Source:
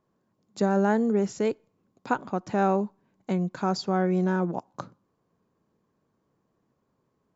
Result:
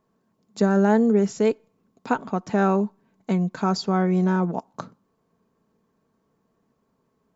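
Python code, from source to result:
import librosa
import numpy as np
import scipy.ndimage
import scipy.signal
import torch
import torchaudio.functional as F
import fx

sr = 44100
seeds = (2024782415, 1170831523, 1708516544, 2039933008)

y = x + 0.37 * np.pad(x, (int(4.5 * sr / 1000.0), 0))[:len(x)]
y = y * 10.0 ** (3.0 / 20.0)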